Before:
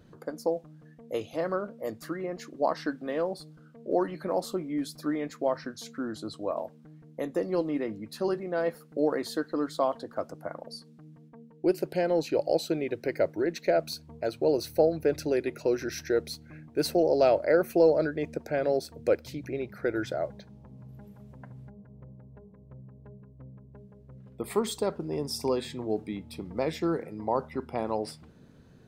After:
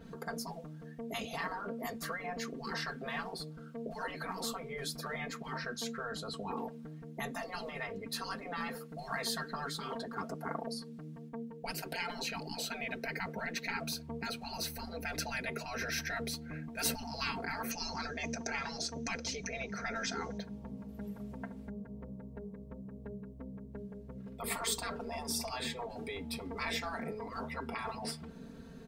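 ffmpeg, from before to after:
-filter_complex "[0:a]asettb=1/sr,asplit=3[a][b][c];[a]atrim=end=17.714[d];[b]atrim=start=17.71:end=20.38,asetpts=PTS-STARTPTS,afade=t=in:d=0.004:c=qsin,afade=t=out:st=2.666:d=0.004:c=qsin,lowpass=f=6.1k:t=q:w=13[e];[c]atrim=start=20.376[f];[d][e]acrossfade=d=0.004:c1=hsin:c2=qsin[g];[g][f]acrossfade=d=0.004:c1=qsin:c2=hsin,afftfilt=real='re*lt(hypot(re,im),0.0562)':imag='im*lt(hypot(re,im),0.0562)':win_size=1024:overlap=0.75,aecho=1:1:4.4:0.83,adynamicequalizer=threshold=0.00178:dfrequency=3200:dqfactor=0.7:tfrequency=3200:tqfactor=0.7:attack=5:release=100:ratio=0.375:range=2.5:mode=cutabove:tftype=highshelf,volume=3.5dB"

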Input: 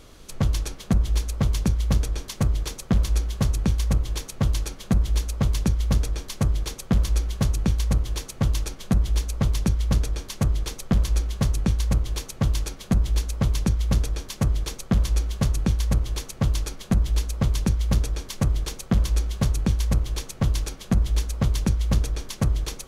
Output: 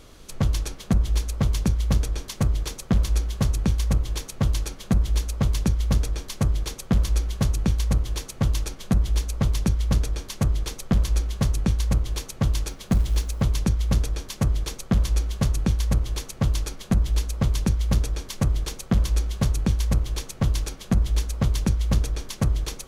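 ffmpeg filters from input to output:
-filter_complex "[0:a]asettb=1/sr,asplit=3[a][b][c];[a]atrim=end=12.684[d];[b]atrim=start=12.68:end=13.42,asetpts=PTS-STARTPTS,afade=t=in:d=0.004:c=qsin,afade=t=out:st=0.736:d=0.004:c=qsin,acrusher=bits=8:mode=log:mix=0:aa=0.000001[e];[c]atrim=start=13.416[f];[d][e]acrossfade=d=0.004:c1=hsin:c2=qsin[g];[g][f]acrossfade=d=0.004:c1=qsin:c2=hsin"

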